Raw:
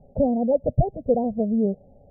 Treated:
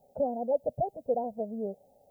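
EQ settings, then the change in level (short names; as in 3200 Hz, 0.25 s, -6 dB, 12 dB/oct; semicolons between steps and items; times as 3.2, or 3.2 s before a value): tilt +4 dB/oct; tilt shelf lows -6.5 dB, about 680 Hz; -2.0 dB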